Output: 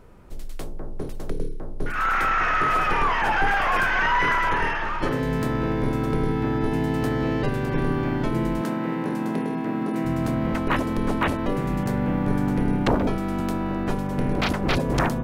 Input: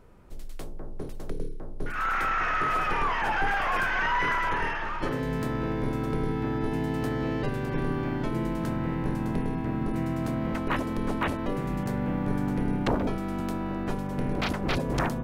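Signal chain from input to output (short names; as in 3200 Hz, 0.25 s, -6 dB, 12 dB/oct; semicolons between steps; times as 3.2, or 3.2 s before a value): 8.61–10.05 HPF 180 Hz 24 dB/oct; gain +5 dB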